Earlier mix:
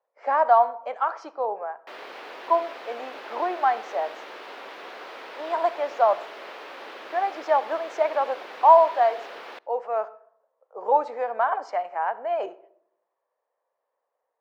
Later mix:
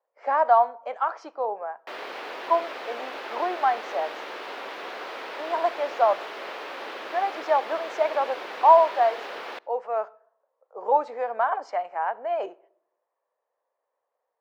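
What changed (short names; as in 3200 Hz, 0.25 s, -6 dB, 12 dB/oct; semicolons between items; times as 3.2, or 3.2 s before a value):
speech: send -7.0 dB; background +4.0 dB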